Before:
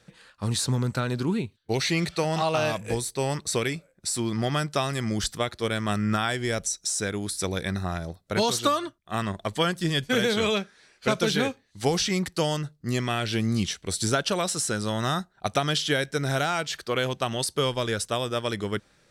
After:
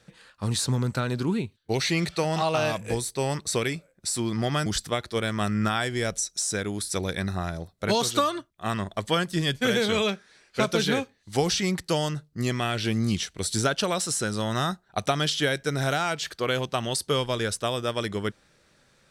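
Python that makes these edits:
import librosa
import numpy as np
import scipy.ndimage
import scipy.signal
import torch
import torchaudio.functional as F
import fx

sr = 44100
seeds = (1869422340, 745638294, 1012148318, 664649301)

y = fx.edit(x, sr, fx.cut(start_s=4.66, length_s=0.48), tone=tone)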